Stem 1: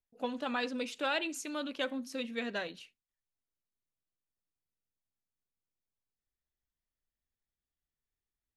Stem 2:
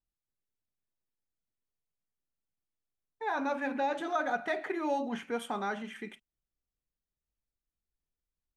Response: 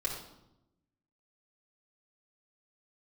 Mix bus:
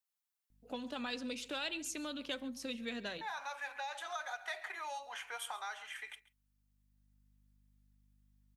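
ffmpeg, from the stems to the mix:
-filter_complex "[0:a]aeval=exprs='val(0)+0.000355*(sin(2*PI*50*n/s)+sin(2*PI*2*50*n/s)/2+sin(2*PI*3*50*n/s)/3+sin(2*PI*4*50*n/s)/4+sin(2*PI*5*50*n/s)/5)':channel_layout=same,adelay=500,volume=0.5dB,asplit=2[link_01][link_02];[link_02]volume=-22dB[link_03];[1:a]highpass=frequency=770:width=0.5412,highpass=frequency=770:width=1.3066,highshelf=frequency=10000:gain=6.5,volume=1.5dB,asplit=3[link_04][link_05][link_06];[link_05]volume=-20dB[link_07];[link_06]apad=whole_len=399883[link_08];[link_01][link_08]sidechaincompress=threshold=-57dB:ratio=3:attack=16:release=843[link_09];[link_03][link_07]amix=inputs=2:normalize=0,aecho=0:1:137:1[link_10];[link_09][link_04][link_10]amix=inputs=3:normalize=0,acrossover=split=180|3000[link_11][link_12][link_13];[link_12]acompressor=threshold=-42dB:ratio=4[link_14];[link_11][link_14][link_13]amix=inputs=3:normalize=0"

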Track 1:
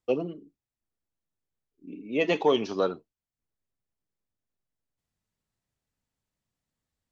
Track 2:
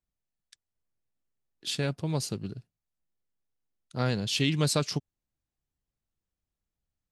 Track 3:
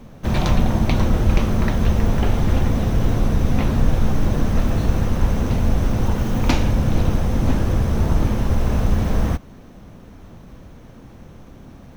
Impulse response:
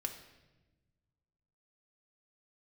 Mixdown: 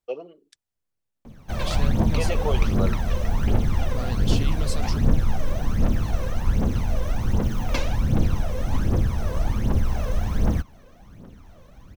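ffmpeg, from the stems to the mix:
-filter_complex "[0:a]lowshelf=frequency=350:width_type=q:width=1.5:gain=-10.5,volume=-5.5dB[link_01];[1:a]alimiter=level_in=0.5dB:limit=-24dB:level=0:latency=1:release=161,volume=-0.5dB,volume=1dB[link_02];[2:a]lowshelf=frequency=160:gain=-4.5,aphaser=in_gain=1:out_gain=1:delay=2:decay=0.68:speed=1.3:type=triangular,adelay=1250,volume=-7.5dB[link_03];[link_01][link_02][link_03]amix=inputs=3:normalize=0"

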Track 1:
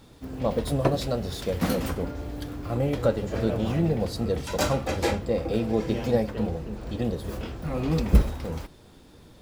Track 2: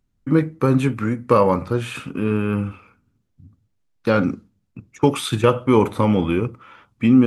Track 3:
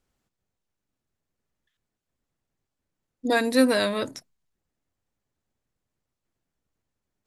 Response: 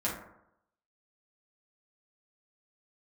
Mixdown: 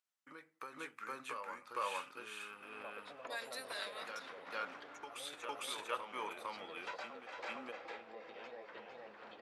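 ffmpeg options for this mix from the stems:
-filter_complex "[0:a]lowpass=2200,acompressor=threshold=-32dB:ratio=2.5,adelay=2400,volume=1dB,asplit=2[link_01][link_02];[link_02]volume=-8.5dB[link_03];[1:a]volume=-12dB,asplit=2[link_04][link_05];[link_05]volume=-4dB[link_06];[2:a]acompressor=threshold=-20dB:ratio=6,volume=-14dB,asplit=2[link_07][link_08];[link_08]volume=-20dB[link_09];[link_01][link_04]amix=inputs=2:normalize=0,acompressor=threshold=-34dB:ratio=6,volume=0dB[link_10];[link_03][link_06][link_09]amix=inputs=3:normalize=0,aecho=0:1:454:1[link_11];[link_07][link_10][link_11]amix=inputs=3:normalize=0,highpass=1100"

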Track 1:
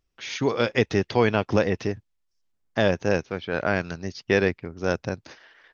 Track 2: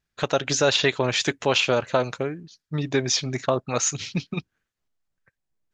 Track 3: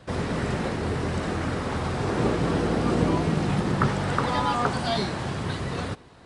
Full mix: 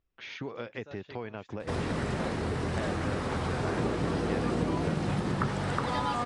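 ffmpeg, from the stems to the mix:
ffmpeg -i stem1.wav -i stem2.wav -i stem3.wav -filter_complex "[0:a]acompressor=threshold=-32dB:ratio=5,lowpass=3000,volume=-4dB,asplit=2[link_01][link_02];[1:a]acrossover=split=2800[link_03][link_04];[link_04]acompressor=threshold=-37dB:ratio=4:attack=1:release=60[link_05];[link_03][link_05]amix=inputs=2:normalize=0,adelay=250,volume=-19dB[link_06];[2:a]acompressor=threshold=-29dB:ratio=2,adelay=1600,volume=-1dB[link_07];[link_02]apad=whole_len=263836[link_08];[link_06][link_08]sidechaincompress=threshold=-52dB:ratio=12:attack=32:release=156[link_09];[link_01][link_09][link_07]amix=inputs=3:normalize=0" out.wav

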